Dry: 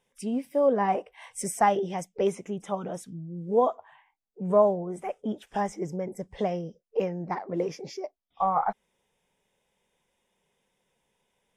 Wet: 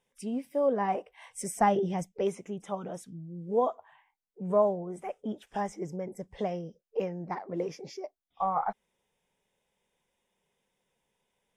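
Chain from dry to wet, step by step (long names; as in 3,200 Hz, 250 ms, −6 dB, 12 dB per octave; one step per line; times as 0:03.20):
0:01.56–0:02.12: low-shelf EQ 270 Hz +11.5 dB
level −4 dB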